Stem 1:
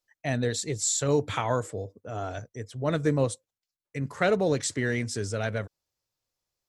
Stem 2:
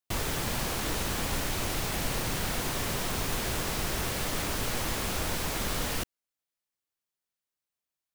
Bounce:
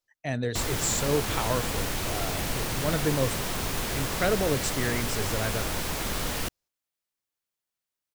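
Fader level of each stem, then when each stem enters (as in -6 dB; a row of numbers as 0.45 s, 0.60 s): -2.0 dB, +1.0 dB; 0.00 s, 0.45 s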